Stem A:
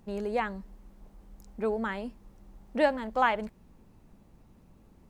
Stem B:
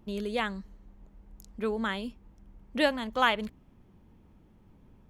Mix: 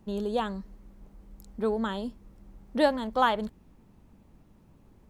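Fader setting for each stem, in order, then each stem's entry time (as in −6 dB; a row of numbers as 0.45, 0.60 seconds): −2.0, −3.5 decibels; 0.00, 0.00 seconds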